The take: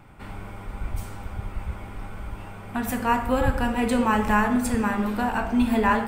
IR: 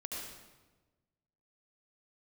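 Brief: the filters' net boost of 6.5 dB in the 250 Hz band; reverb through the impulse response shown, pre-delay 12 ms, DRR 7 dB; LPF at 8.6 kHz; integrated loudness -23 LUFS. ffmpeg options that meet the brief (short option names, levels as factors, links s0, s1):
-filter_complex "[0:a]lowpass=8600,equalizer=f=250:t=o:g=7,asplit=2[s0][s1];[1:a]atrim=start_sample=2205,adelay=12[s2];[s1][s2]afir=irnorm=-1:irlink=0,volume=0.447[s3];[s0][s3]amix=inputs=2:normalize=0,volume=0.562"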